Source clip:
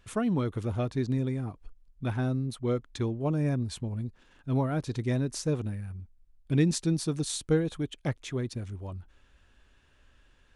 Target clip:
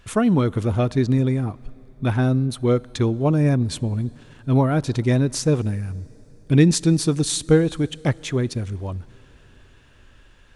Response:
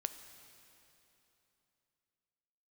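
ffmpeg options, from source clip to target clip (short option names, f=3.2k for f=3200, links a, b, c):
-filter_complex "[0:a]asplit=2[a][b];[1:a]atrim=start_sample=2205,asetrate=33957,aresample=44100[c];[b][c]afir=irnorm=-1:irlink=0,volume=-13dB[d];[a][d]amix=inputs=2:normalize=0,volume=8dB"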